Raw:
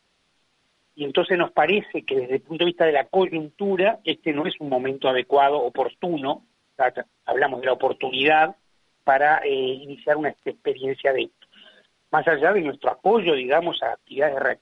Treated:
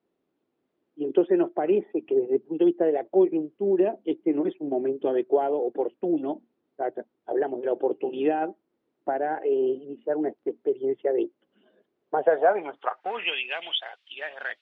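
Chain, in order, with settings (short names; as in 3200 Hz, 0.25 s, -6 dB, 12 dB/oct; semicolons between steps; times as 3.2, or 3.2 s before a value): band-pass sweep 340 Hz -> 3000 Hz, 11.95–13.47; gain +2.5 dB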